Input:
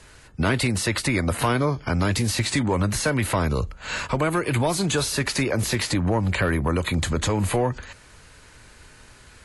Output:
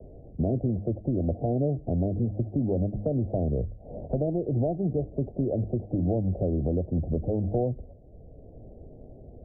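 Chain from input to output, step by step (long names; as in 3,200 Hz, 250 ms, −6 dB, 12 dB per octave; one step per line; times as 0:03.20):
Butterworth low-pass 730 Hz 96 dB per octave
hum removal 102.6 Hz, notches 3
multiband upward and downward compressor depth 40%
level −3 dB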